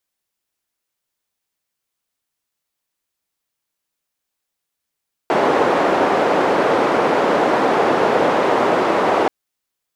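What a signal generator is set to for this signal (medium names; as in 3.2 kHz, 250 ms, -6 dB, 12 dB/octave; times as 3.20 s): noise band 350–690 Hz, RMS -16 dBFS 3.98 s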